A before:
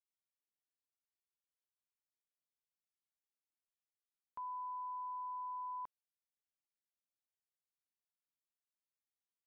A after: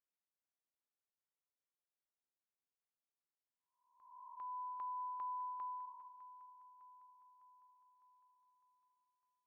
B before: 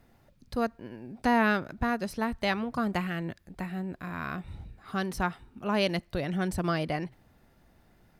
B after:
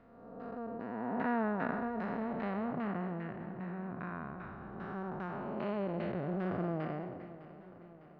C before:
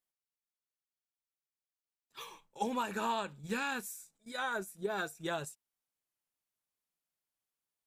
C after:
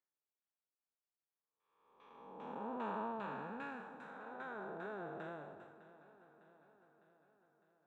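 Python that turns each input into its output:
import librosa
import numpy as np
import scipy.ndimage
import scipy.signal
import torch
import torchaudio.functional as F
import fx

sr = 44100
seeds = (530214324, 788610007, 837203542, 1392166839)

p1 = fx.spec_blur(x, sr, span_ms=556.0)
p2 = fx.dereverb_blind(p1, sr, rt60_s=0.58)
p3 = fx.low_shelf(p2, sr, hz=110.0, db=-12.0)
p4 = fx.filter_lfo_lowpass(p3, sr, shape='saw_down', hz=2.5, low_hz=770.0, high_hz=1900.0, q=0.87)
p5 = p4 + fx.echo_feedback(p4, sr, ms=605, feedback_pct=58, wet_db=-16.0, dry=0)
y = p5 * librosa.db_to_amplitude(2.0)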